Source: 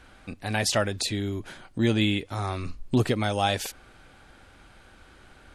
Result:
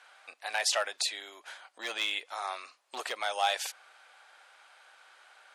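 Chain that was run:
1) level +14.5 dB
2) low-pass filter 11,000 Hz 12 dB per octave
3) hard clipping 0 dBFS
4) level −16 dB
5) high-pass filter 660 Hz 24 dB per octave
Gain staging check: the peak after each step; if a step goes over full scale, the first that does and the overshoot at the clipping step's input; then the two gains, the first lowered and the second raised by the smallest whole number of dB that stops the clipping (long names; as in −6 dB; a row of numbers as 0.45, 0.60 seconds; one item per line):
+5.5, +5.5, 0.0, −16.0, −15.0 dBFS
step 1, 5.5 dB
step 1 +8.5 dB, step 4 −10 dB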